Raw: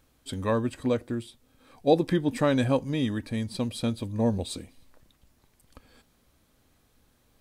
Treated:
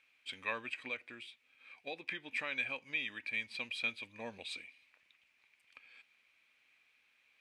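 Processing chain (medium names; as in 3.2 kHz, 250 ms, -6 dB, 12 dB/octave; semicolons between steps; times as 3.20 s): 0.88–3.29 s: compression 2.5:1, threshold -27 dBFS, peak gain reduction 8.5 dB; band-pass filter 2.4 kHz, Q 7.4; trim +12.5 dB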